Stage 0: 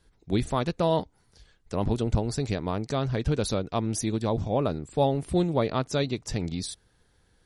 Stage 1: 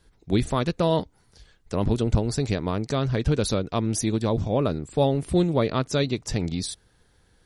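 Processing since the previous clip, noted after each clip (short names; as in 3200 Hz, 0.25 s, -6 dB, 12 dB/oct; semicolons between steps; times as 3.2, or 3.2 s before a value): dynamic EQ 790 Hz, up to -5 dB, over -38 dBFS, Q 2.3; gain +3.5 dB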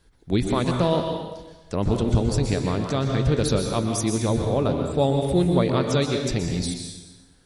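plate-style reverb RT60 1.1 s, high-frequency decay 0.95×, pre-delay 0.11 s, DRR 3 dB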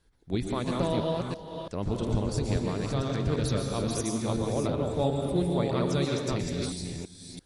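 reverse delay 0.336 s, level -2.5 dB; gain -8 dB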